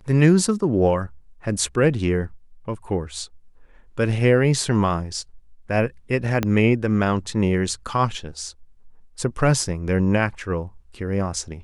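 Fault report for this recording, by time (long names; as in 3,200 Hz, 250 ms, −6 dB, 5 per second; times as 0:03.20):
0:06.43: click −8 dBFS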